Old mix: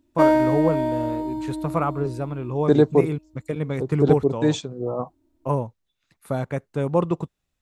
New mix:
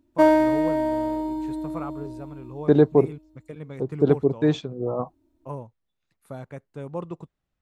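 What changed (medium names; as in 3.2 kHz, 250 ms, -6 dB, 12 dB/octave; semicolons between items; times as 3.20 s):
first voice -11.5 dB; second voice: add Bessel low-pass 2.9 kHz, order 2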